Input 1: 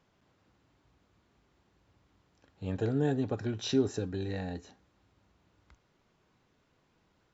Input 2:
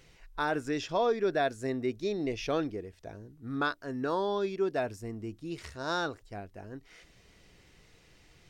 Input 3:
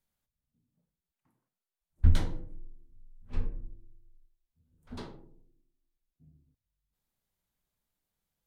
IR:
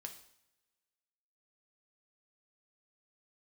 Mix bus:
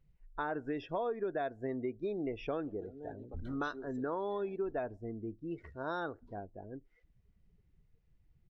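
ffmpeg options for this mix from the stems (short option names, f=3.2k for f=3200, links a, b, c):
-filter_complex "[0:a]highpass=f=440:p=1,volume=-12.5dB[a];[1:a]lowpass=f=1.3k:p=1,lowshelf=f=69:g=7,volume=0dB,asplit=2[b][c];[c]volume=-18dB[d];[2:a]adelay=1300,volume=-14dB[e];[3:a]atrim=start_sample=2205[f];[d][f]afir=irnorm=-1:irlink=0[g];[a][b][e][g]amix=inputs=4:normalize=0,afftdn=nr=23:nf=-48,lowshelf=f=170:g=-10,acompressor=threshold=-33dB:ratio=4"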